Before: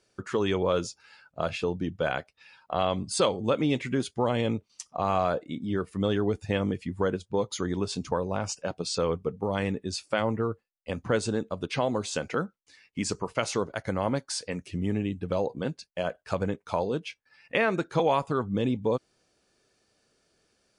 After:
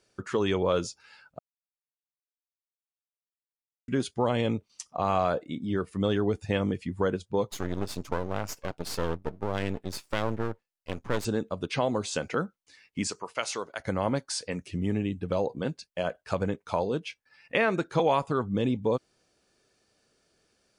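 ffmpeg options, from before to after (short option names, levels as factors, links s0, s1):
-filter_complex "[0:a]asettb=1/sr,asplit=3[s0][s1][s2];[s0]atrim=end=7.514[s3];[s1]atrim=start=7.51:end=11.25,asetpts=PTS-STARTPTS,afade=t=in:d=0.004:c=qsin,afade=t=out:st=3.736:d=0.004:c=qsin,aeval=exprs='max(val(0),0)':c=same[s4];[s2]atrim=start=11.246[s5];[s3][s4]acrossfade=d=0.004:c1=hsin:c2=qsin[s6];[s6][s5]acrossfade=d=0.004:c1=qsin:c2=hsin,asettb=1/sr,asplit=3[s7][s8][s9];[s7]atrim=end=13.074[s10];[s8]atrim=start=13.07:end=13.8,asetpts=PTS-STARTPTS,afade=t=in:d=0.004:c=qsin,afade=t=out:st=0.726:d=0.004:c=qsin,highpass=f=870:p=1[s11];[s9]atrim=start=13.796[s12];[s10][s11]acrossfade=d=0.004:c1=hsin:c2=qsin[s13];[s13][s12]acrossfade=d=0.004:c1=qsin:c2=hsin,asplit=3[s14][s15][s16];[s14]atrim=end=1.39,asetpts=PTS-STARTPTS,afade=t=out:st=1.386:d=0.004:c=hsin[s17];[s15]atrim=start=1.39:end=3.88,asetpts=PTS-STARTPTS,volume=0[s18];[s16]atrim=start=3.88,asetpts=PTS-STARTPTS,afade=t=in:d=0.004:c=hsin[s19];[s17][s18][s19]concat=n=3:v=0:a=1"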